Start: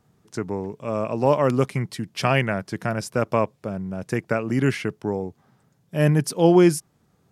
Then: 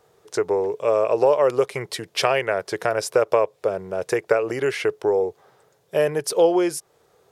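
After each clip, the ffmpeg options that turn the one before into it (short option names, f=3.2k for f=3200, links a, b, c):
-af "equalizer=f=3.7k:t=o:w=0.33:g=2.5,acompressor=threshold=-24dB:ratio=4,lowshelf=f=320:t=q:w=3:g=-11,volume=6.5dB"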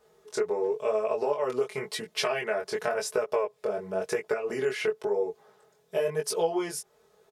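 -af "aecho=1:1:4.7:0.81,acompressor=threshold=-19dB:ratio=3,flanger=delay=18:depth=5.9:speed=0.94,volume=-3dB"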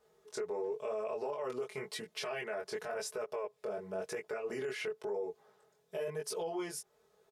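-af "alimiter=limit=-23dB:level=0:latency=1:release=16,volume=-7dB"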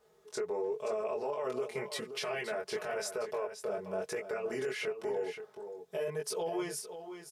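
-af "aecho=1:1:525:0.316,volume=2.5dB"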